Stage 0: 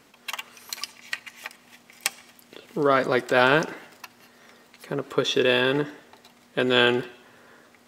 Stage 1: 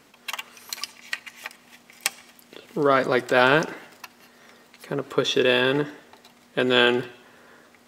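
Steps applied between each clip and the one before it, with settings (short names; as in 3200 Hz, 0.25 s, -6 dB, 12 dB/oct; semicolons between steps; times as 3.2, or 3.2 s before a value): notches 60/120 Hz; gain +1 dB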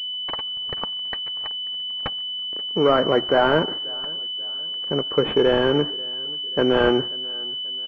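sample leveller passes 2; feedback echo 0.536 s, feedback 44%, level -23 dB; pulse-width modulation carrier 3000 Hz; gain -3.5 dB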